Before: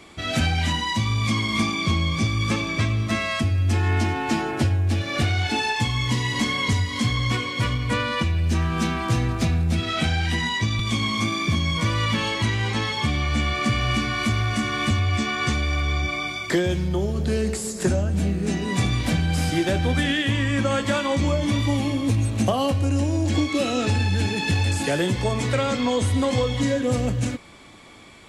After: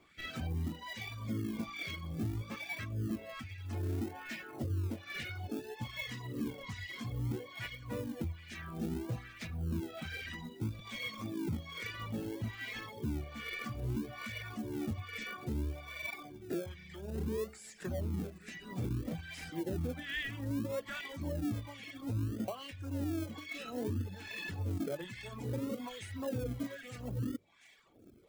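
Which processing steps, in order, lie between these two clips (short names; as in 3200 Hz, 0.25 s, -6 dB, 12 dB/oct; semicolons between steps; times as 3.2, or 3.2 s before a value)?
passive tone stack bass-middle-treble 10-0-1; notches 50/100/150/200 Hz; thin delay 0.396 s, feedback 69%, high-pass 2600 Hz, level -14 dB; wah 1.2 Hz 350–1900 Hz, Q 2.3; in parallel at -10 dB: decimation with a swept rate 37×, swing 60% 0.61 Hz; on the sum: reverb removal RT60 0.82 s; limiter -46 dBFS, peak gain reduction 10 dB; high shelf 9700 Hz +11.5 dB; gain +17.5 dB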